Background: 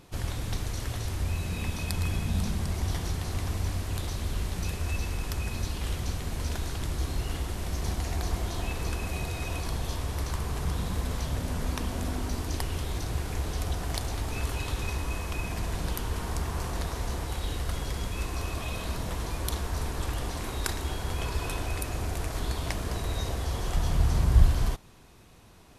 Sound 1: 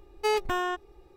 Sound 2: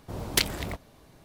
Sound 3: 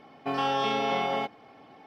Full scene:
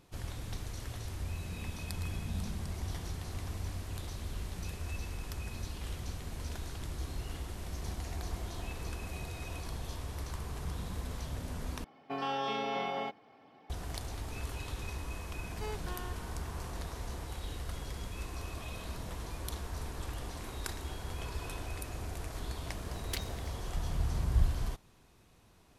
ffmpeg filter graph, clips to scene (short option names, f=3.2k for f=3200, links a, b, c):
-filter_complex "[0:a]volume=-8.5dB[a];[3:a]highpass=50[b];[1:a]aeval=exprs='val(0)+0.00562*sin(2*PI*1500*n/s)':c=same[c];[a]asplit=2[d][e];[d]atrim=end=11.844[f];[b]atrim=end=1.86,asetpts=PTS-STARTPTS,volume=-7.5dB[g];[e]atrim=start=13.696[h];[c]atrim=end=1.16,asetpts=PTS-STARTPTS,volume=-17dB,afade=t=in:d=0.004:c=hsin,afade=t=out:st=1.156:d=0.004:c=hsin,adelay=15370[i];[2:a]atrim=end=1.24,asetpts=PTS-STARTPTS,volume=-15.5dB,afade=t=in:d=0.004:c=hsin,afade=t=out:st=1.236:d=0.004:c=hsin,adelay=1003716S[j];[f][g]acrossfade=d=0.004:c1=hsin:c2=hsin[k];[k][h]acrossfade=d=0.004:c1=hsin:c2=hsin[l];[l][i][j]amix=inputs=3:normalize=0"